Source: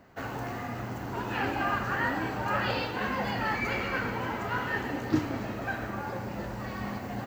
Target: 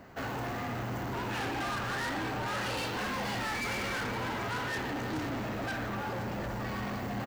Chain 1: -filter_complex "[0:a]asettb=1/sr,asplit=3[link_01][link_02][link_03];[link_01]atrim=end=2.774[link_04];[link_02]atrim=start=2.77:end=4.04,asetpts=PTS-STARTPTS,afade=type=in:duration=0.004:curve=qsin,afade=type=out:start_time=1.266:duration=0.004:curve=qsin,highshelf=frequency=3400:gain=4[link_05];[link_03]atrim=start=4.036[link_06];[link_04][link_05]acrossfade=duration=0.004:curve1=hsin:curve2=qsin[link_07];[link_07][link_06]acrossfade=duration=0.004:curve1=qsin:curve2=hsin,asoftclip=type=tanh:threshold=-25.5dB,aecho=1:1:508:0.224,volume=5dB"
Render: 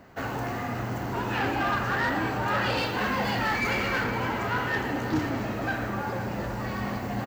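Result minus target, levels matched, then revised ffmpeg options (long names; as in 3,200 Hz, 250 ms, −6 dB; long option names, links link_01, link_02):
soft clipping: distortion −8 dB
-filter_complex "[0:a]asettb=1/sr,asplit=3[link_01][link_02][link_03];[link_01]atrim=end=2.774[link_04];[link_02]atrim=start=2.77:end=4.04,asetpts=PTS-STARTPTS,afade=type=in:duration=0.004:curve=qsin,afade=type=out:start_time=1.266:duration=0.004:curve=qsin,highshelf=frequency=3400:gain=4[link_05];[link_03]atrim=start=4.036[link_06];[link_04][link_05]acrossfade=duration=0.004:curve1=hsin:curve2=qsin[link_07];[link_07][link_06]acrossfade=duration=0.004:curve1=qsin:curve2=hsin,asoftclip=type=tanh:threshold=-37.5dB,aecho=1:1:508:0.224,volume=5dB"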